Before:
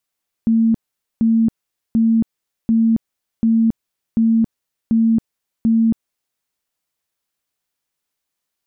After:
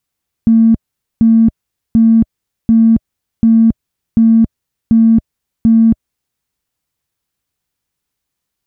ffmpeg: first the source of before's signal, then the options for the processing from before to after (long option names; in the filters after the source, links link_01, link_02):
-f lavfi -i "aevalsrc='0.282*sin(2*PI*226*mod(t,0.74))*lt(mod(t,0.74),62/226)':duration=5.92:sample_rate=44100"
-filter_complex "[0:a]bandreject=frequency=620:width=12,asplit=2[link_01][link_02];[link_02]asoftclip=type=hard:threshold=-23.5dB,volume=-11dB[link_03];[link_01][link_03]amix=inputs=2:normalize=0,equalizer=frequency=65:width=0.36:gain=13"